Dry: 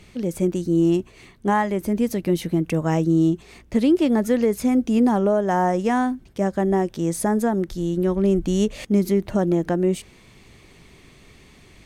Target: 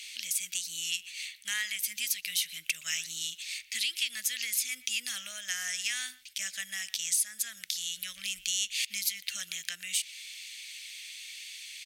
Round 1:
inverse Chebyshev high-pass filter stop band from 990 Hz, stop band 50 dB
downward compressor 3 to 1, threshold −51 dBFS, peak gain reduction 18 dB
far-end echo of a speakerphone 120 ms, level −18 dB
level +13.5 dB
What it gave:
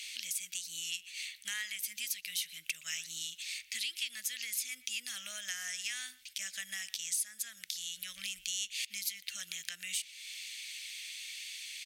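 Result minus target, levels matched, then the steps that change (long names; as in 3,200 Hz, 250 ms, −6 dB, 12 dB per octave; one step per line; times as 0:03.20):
downward compressor: peak gain reduction +6 dB
change: downward compressor 3 to 1, threshold −42 dBFS, peak gain reduction 12 dB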